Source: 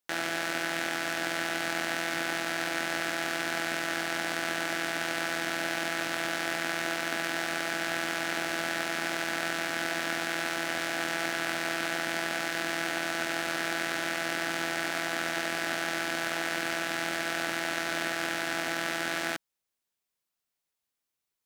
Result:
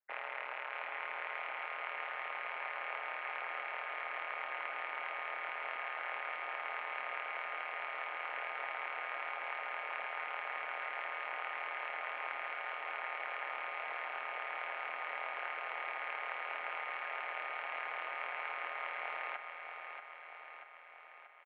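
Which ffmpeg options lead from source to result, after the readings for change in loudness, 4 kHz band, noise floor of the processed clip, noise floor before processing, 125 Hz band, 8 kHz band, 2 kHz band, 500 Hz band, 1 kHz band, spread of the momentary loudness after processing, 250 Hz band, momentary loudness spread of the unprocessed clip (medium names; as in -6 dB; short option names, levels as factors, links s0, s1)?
-9.5 dB, -18.0 dB, -52 dBFS, under -85 dBFS, under -40 dB, under -40 dB, -9.5 dB, -12.5 dB, -5.0 dB, 2 LU, under -30 dB, 0 LU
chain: -af "afftfilt=real='re*lt(hypot(re,im),0.0631)':imag='im*lt(hypot(re,im),0.0631)':win_size=1024:overlap=0.75,highpass=f=490:t=q:w=0.5412,highpass=f=490:t=q:w=1.307,lowpass=f=2300:t=q:w=0.5176,lowpass=f=2300:t=q:w=0.7071,lowpass=f=2300:t=q:w=1.932,afreqshift=68,tremolo=f=130:d=0.919,aecho=1:1:635|1270|1905|2540|3175|3810|4445|5080:0.447|0.268|0.161|0.0965|0.0579|0.0347|0.0208|0.0125,volume=1.19" -ar 24000 -c:a libmp3lame -b:a 56k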